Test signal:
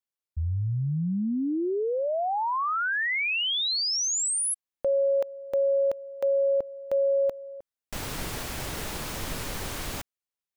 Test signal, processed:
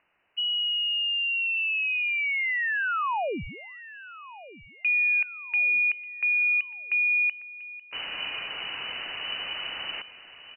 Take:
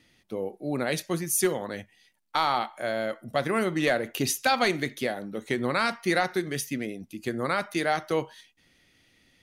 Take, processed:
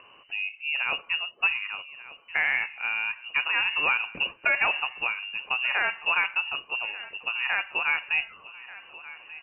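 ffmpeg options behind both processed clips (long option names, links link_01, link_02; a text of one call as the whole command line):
ffmpeg -i in.wav -af "aecho=1:1:1189|2378|3567:0.133|0.0467|0.0163,acompressor=mode=upward:threshold=-40dB:ratio=2.5:attack=2.7:release=45:knee=2.83:detection=peak,lowpass=frequency=2600:width_type=q:width=0.5098,lowpass=frequency=2600:width_type=q:width=0.6013,lowpass=frequency=2600:width_type=q:width=0.9,lowpass=frequency=2600:width_type=q:width=2.563,afreqshift=-3000" out.wav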